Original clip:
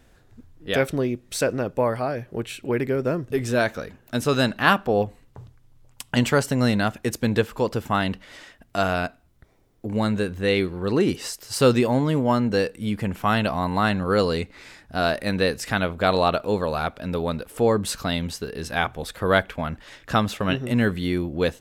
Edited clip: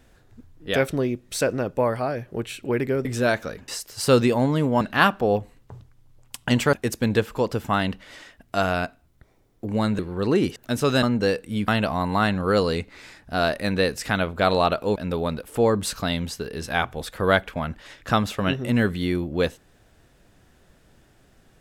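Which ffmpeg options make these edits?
-filter_complex "[0:a]asplit=10[a][b][c][d][e][f][g][h][i][j];[a]atrim=end=3.052[k];[b]atrim=start=3.368:end=4.002[l];[c]atrim=start=11.208:end=12.342[m];[d]atrim=start=4.468:end=6.392[n];[e]atrim=start=6.938:end=10.202[o];[f]atrim=start=10.638:end=11.212[p];[g]atrim=start=3.998:end=4.472[q];[h]atrim=start=12.338:end=12.992[r];[i]atrim=start=13.298:end=16.582[s];[j]atrim=start=16.978[t];[k][l]acrossfade=d=0.004:c1=hsin:c2=hsin[u];[u][m]acrossfade=d=0.004:c1=hsin:c2=hsin[v];[v][n]acrossfade=d=0.004:c1=hsin:c2=hsin[w];[w][o]acrossfade=d=0.004:c1=hsin:c2=hsin[x];[x][p]acrossfade=d=0.004:c1=hsin:c2=hsin[y];[y][q]acrossfade=d=0.004:c1=hsin:c2=hsin[z];[z][r]acrossfade=d=0.004:c1=hsin:c2=hsin[aa];[aa][s]acrossfade=d=0.004:c1=hsin:c2=hsin[ab];[ab][t]acrossfade=d=0.004:c1=hsin:c2=hsin"

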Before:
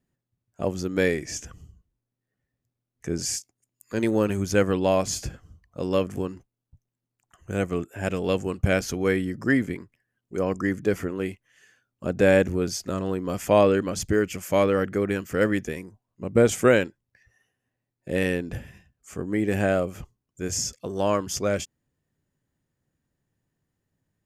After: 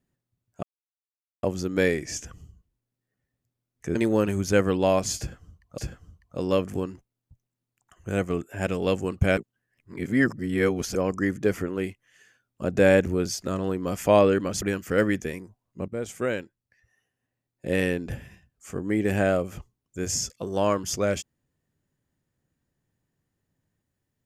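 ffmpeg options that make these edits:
-filter_complex "[0:a]asplit=8[a][b][c][d][e][f][g][h];[a]atrim=end=0.63,asetpts=PTS-STARTPTS,afade=t=out:st=0.626:d=0.004:c=hsin,apad=pad_dur=0.8[i];[b]atrim=start=0.63:end=3.152,asetpts=PTS-STARTPTS,afade=t=in:d=0.004:c=hsin[j];[c]atrim=start=3.968:end=5.802[k];[d]atrim=start=5.198:end=8.792[l];[e]atrim=start=8.788:end=10.372,asetpts=PTS-STARTPTS,areverse[m];[f]atrim=start=10.368:end=14.042[n];[g]atrim=start=15.048:end=16.31,asetpts=PTS-STARTPTS,afade=t=out:st=1.258:d=0.004:c=hsin:silence=0.158489[o];[h]atrim=start=16.31,asetpts=PTS-STARTPTS,afade=t=in:d=1.81:silence=0.158489[p];[i][j]concat=n=2:v=0:a=1[q];[q][k]acrossfade=d=0.004:c1=hsin:c2=hsin[r];[r][l]acrossfade=d=0.004:c1=hsin:c2=hsin[s];[s][m]acrossfade=d=0.004:c1=hsin:c2=hsin[t];[t][n]acrossfade=d=0.004:c1=hsin:c2=hsin[u];[o][p]concat=n=2:v=0:a=1[v];[u][v]acrossfade=d=0.004:c1=hsin:c2=hsin"

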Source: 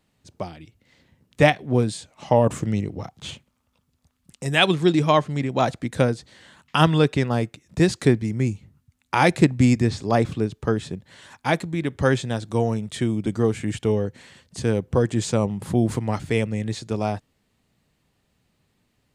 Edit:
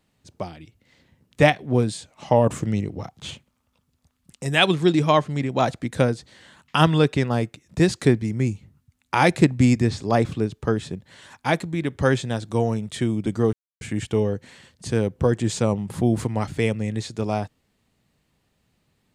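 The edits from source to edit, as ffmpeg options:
-filter_complex "[0:a]asplit=2[a][b];[a]atrim=end=13.53,asetpts=PTS-STARTPTS,afade=t=out:st=13.526:d=0.004:c=hsin,apad=pad_dur=0.28[c];[b]atrim=start=13.53,asetpts=PTS-STARTPTS,afade=t=in:d=0.004:c=hsin[d];[c][d]concat=n=2:v=0:a=1"

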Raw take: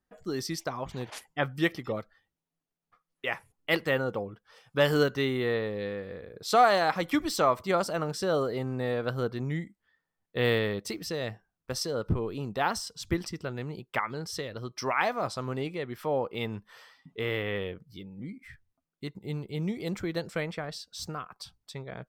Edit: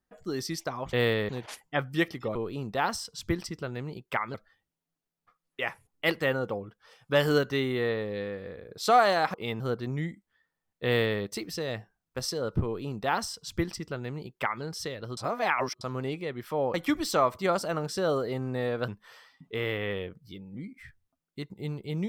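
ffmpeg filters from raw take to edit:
-filter_complex "[0:a]asplit=11[a][b][c][d][e][f][g][h][i][j][k];[a]atrim=end=0.932[l];[b]atrim=start=10.378:end=10.742[m];[c]atrim=start=0.928:end=1.992[n];[d]atrim=start=12.168:end=14.162[o];[e]atrim=start=1.988:end=6.992[p];[f]atrim=start=16.268:end=16.532[q];[g]atrim=start=9.128:end=14.702[r];[h]atrim=start=14.698:end=15.342,asetpts=PTS-STARTPTS,areverse[s];[i]atrim=start=15.338:end=16.272[t];[j]atrim=start=6.988:end=9.132[u];[k]atrim=start=16.528[v];[l][m]acrossfade=d=0.004:c1=hsin:c2=hsin[w];[w][n]acrossfade=d=0.004:c1=hsin:c2=hsin[x];[x][o]acrossfade=d=0.004:c1=hsin:c2=hsin[y];[y][p]acrossfade=d=0.004:c1=hsin:c2=hsin[z];[z][q]acrossfade=d=0.004:c1=hsin:c2=hsin[aa];[aa][r]acrossfade=d=0.004:c1=hsin:c2=hsin[ab];[ab][s]acrossfade=d=0.004:c1=hsin:c2=hsin[ac];[ac][t]acrossfade=d=0.004:c1=hsin:c2=hsin[ad];[ad][u]acrossfade=d=0.004:c1=hsin:c2=hsin[ae];[ae][v]acrossfade=d=0.004:c1=hsin:c2=hsin"

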